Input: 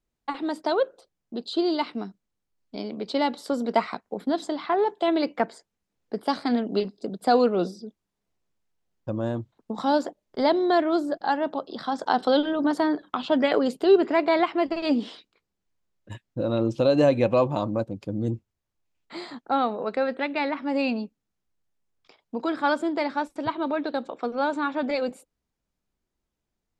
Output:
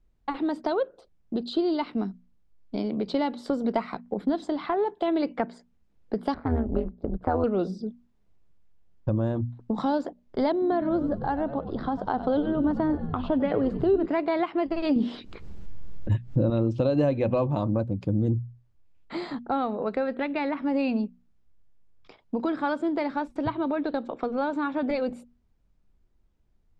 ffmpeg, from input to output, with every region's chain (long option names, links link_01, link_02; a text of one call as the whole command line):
ffmpeg -i in.wav -filter_complex "[0:a]asettb=1/sr,asplit=3[link_01][link_02][link_03];[link_01]atrim=end=6.344[link_04];[link_02]atrim=start=6.34:end=7.44,asetpts=PTS-STARTPTS,afade=type=in:duration=0.004:curve=qsin,afade=type=out:start_time=1.096:duration=0.004:curve=qsin,tremolo=f=160:d=0.857,lowpass=frequency=1400:width_type=q:width=1.5[link_05];[link_03]atrim=start=7.436[link_06];[link_04][link_05]acrossfade=duration=0.004:curve1=hsin:curve2=qsin[link_07];[link_07][link_06]acrossfade=duration=0.004:curve1=qsin:curve2=hsin,asettb=1/sr,asplit=3[link_08][link_09][link_10];[link_08]atrim=end=10.524[link_11];[link_09]atrim=start=10.52:end=14.06,asetpts=PTS-STARTPTS,afade=type=in:duration=0.004:curve=qsin,afade=type=out:start_time=3.536:duration=0.004:curve=qsin,lowpass=frequency=1300:poles=1,asplit=6[link_12][link_13][link_14][link_15][link_16][link_17];[link_13]adelay=96,afreqshift=-72,volume=-13dB[link_18];[link_14]adelay=192,afreqshift=-144,volume=-18.8dB[link_19];[link_15]adelay=288,afreqshift=-216,volume=-24.7dB[link_20];[link_16]adelay=384,afreqshift=-288,volume=-30.5dB[link_21];[link_17]adelay=480,afreqshift=-360,volume=-36.4dB[link_22];[link_12][link_18][link_19][link_20][link_21][link_22]amix=inputs=6:normalize=0,atrim=end_sample=156114[link_23];[link_10]atrim=start=14.056[link_24];[link_11][link_23]acrossfade=duration=0.004:curve1=hsin:curve2=qsin[link_25];[link_25][link_24]acrossfade=duration=0.004:curve1=qsin:curve2=hsin,asettb=1/sr,asplit=3[link_26][link_27][link_28];[link_26]atrim=end=14.964[link_29];[link_27]atrim=start=14.96:end=16.5,asetpts=PTS-STARTPTS,afade=type=in:duration=0.004:curve=qsin,afade=type=out:start_time=1.536:duration=0.004:curve=qsin,lowshelf=frequency=460:gain=6.5,acompressor=mode=upward:threshold=-32dB:ratio=2.5:attack=3.2:release=140:knee=2.83:detection=peak[link_30];[link_28]atrim=start=16.496[link_31];[link_29][link_30]acrossfade=duration=0.004:curve1=hsin:curve2=qsin[link_32];[link_32][link_31]acrossfade=duration=0.004:curve1=qsin:curve2=hsin,bandreject=frequency=60:width_type=h:width=6,bandreject=frequency=120:width_type=h:width=6,bandreject=frequency=180:width_type=h:width=6,bandreject=frequency=240:width_type=h:width=6,acompressor=threshold=-35dB:ratio=2,aemphasis=mode=reproduction:type=bsi,volume=4dB" out.wav